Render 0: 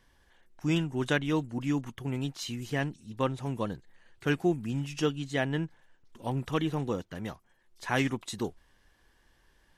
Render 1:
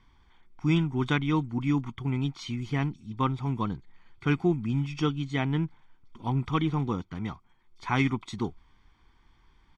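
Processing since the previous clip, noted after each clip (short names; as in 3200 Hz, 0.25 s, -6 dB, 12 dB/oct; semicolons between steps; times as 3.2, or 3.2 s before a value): LPF 3800 Hz 12 dB/oct; comb 0.9 ms, depth 76%; gain +1 dB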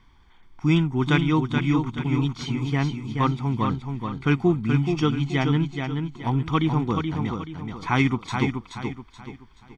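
feedback echo 0.428 s, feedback 36%, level -5.5 dB; gain +4.5 dB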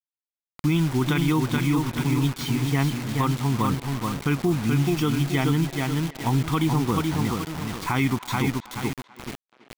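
bit-crush 6-bit; limiter -15.5 dBFS, peak gain reduction 9 dB; speakerphone echo 0.33 s, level -16 dB; gain +2 dB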